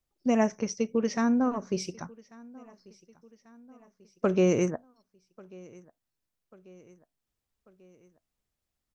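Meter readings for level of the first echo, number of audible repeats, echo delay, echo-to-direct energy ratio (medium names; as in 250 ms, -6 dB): -24.0 dB, 3, 1141 ms, -22.5 dB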